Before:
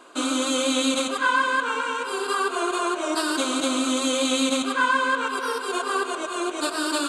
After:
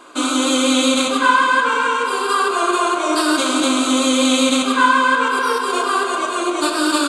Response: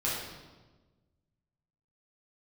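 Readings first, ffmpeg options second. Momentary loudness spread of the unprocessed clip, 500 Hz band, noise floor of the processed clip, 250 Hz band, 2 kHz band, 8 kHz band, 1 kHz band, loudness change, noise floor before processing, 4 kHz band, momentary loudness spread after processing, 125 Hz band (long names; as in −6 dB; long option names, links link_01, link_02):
5 LU, +6.0 dB, −22 dBFS, +8.0 dB, +6.5 dB, +6.0 dB, +8.5 dB, +7.5 dB, −32 dBFS, +7.0 dB, 5 LU, can't be measured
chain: -filter_complex "[0:a]asplit=2[link_01][link_02];[link_02]adelay=268.2,volume=-9dB,highshelf=frequency=4000:gain=-6.04[link_03];[link_01][link_03]amix=inputs=2:normalize=0,asplit=2[link_04][link_05];[1:a]atrim=start_sample=2205[link_06];[link_05][link_06]afir=irnorm=-1:irlink=0,volume=-9.5dB[link_07];[link_04][link_07]amix=inputs=2:normalize=0,volume=3.5dB"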